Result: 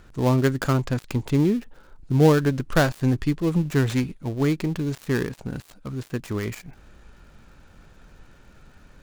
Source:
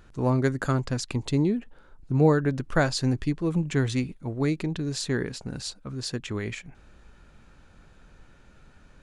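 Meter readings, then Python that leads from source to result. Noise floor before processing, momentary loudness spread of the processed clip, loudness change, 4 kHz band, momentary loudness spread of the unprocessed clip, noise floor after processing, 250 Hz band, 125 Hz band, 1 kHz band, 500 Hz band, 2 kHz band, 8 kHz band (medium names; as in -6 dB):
-55 dBFS, 13 LU, +3.5 dB, -1.5 dB, 11 LU, -53 dBFS, +3.5 dB, +3.5 dB, +3.0 dB, +3.5 dB, +2.5 dB, -2.0 dB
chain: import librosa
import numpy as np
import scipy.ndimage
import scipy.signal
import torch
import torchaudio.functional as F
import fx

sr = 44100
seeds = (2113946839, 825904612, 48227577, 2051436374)

y = fx.dead_time(x, sr, dead_ms=0.14)
y = y * 10.0 ** (3.5 / 20.0)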